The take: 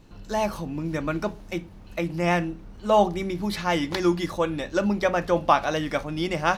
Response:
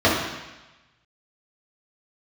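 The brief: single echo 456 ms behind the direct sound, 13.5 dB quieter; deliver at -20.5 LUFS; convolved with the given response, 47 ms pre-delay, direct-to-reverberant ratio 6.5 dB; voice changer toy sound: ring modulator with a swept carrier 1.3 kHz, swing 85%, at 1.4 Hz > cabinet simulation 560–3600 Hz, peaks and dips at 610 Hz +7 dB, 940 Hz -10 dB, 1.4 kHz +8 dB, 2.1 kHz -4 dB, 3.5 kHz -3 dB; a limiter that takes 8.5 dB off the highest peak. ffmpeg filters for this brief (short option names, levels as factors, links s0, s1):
-filter_complex "[0:a]alimiter=limit=0.188:level=0:latency=1,aecho=1:1:456:0.211,asplit=2[s0][s1];[1:a]atrim=start_sample=2205,adelay=47[s2];[s1][s2]afir=irnorm=-1:irlink=0,volume=0.0355[s3];[s0][s3]amix=inputs=2:normalize=0,aeval=exprs='val(0)*sin(2*PI*1300*n/s+1300*0.85/1.4*sin(2*PI*1.4*n/s))':c=same,highpass=560,equalizer=f=610:t=q:w=4:g=7,equalizer=f=940:t=q:w=4:g=-10,equalizer=f=1400:t=q:w=4:g=8,equalizer=f=2100:t=q:w=4:g=-4,equalizer=f=3500:t=q:w=4:g=-3,lowpass=f=3600:w=0.5412,lowpass=f=3600:w=1.3066,volume=2.24"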